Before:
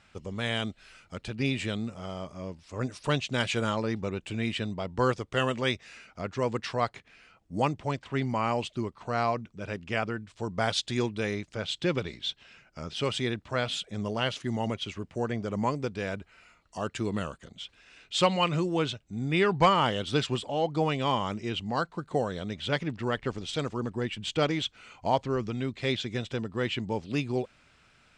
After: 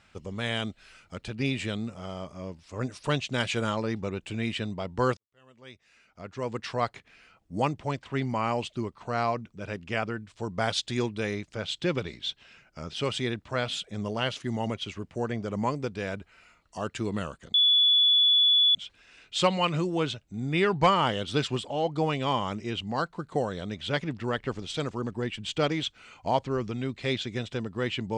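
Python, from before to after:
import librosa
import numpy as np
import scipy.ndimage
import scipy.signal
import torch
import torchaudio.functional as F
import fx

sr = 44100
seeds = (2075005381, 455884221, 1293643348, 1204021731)

y = fx.edit(x, sr, fx.fade_in_span(start_s=5.17, length_s=1.6, curve='qua'),
    fx.insert_tone(at_s=17.54, length_s=1.21, hz=3430.0, db=-17.5), tone=tone)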